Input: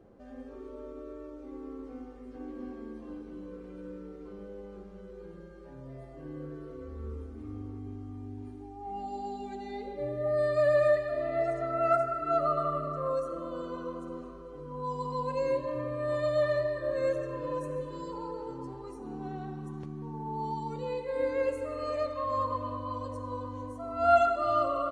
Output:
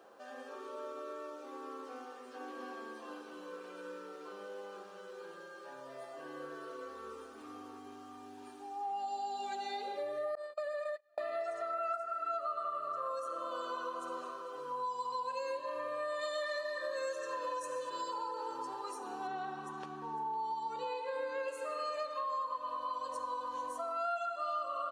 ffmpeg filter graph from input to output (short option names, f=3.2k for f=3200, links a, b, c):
-filter_complex "[0:a]asettb=1/sr,asplit=3[a][b][c];[a]atrim=end=10.354[d];[b]atrim=start=10.35:end=11.18,asetpts=PTS-STARTPTS,afade=t=in:d=0.004:c=qsin,afade=t=out:st=0.826:d=0.004:c=qsin,agate=range=-43dB:threshold=-26dB:ratio=16:release=100:detection=peak,equalizer=f=530:w=7.2:g=12,acompressor=threshold=-37dB:ratio=2.5:attack=3.2:release=140:knee=1:detection=peak[e];[c]atrim=start=11.176[f];[d][e]acrossfade=d=0.004:c1=hsin:c2=qsin[g];[g][f]acrossfade=d=0.004:c1=qsin:c2=hsin,asettb=1/sr,asplit=3[h][i][j];[h]atrim=end=16.214[k];[i]atrim=start=16.21:end=17.9,asetpts=PTS-STARTPTS,afade=t=in:d=0.004:c=qsin,afade=t=out:st=1.686:d=0.004:c=qsin,equalizer=f=6k:t=o:w=1.3:g=8.5,aecho=1:1:3.9:0.32,atrim=end_sample=74529[l];[j]atrim=start=17.896[m];[k][l]acrossfade=d=0.004:c1=hsin:c2=qsin[n];[n][m]acrossfade=d=0.004:c1=qsin:c2=hsin,asettb=1/sr,asplit=3[o][p][q];[o]atrim=end=19.274[r];[p]atrim=start=19.27:end=21.48,asetpts=PTS-STARTPTS,afade=t=in:d=0.004:c=qsin,afade=t=out:st=2.206:d=0.004:c=qsin,lowpass=f=4k:p=1,lowshelf=f=170:g=7,aecho=1:1:505:0.188,atrim=end_sample=97461[s];[q]atrim=start=21.476[t];[r][s]acrossfade=d=0.004:c1=hsin:c2=qsin[u];[u][t]acrossfade=d=0.004:c1=qsin:c2=hsin,highpass=980,equalizer=f=2.1k:w=6.6:g=-11.5,acompressor=threshold=-48dB:ratio=6,volume=12dB"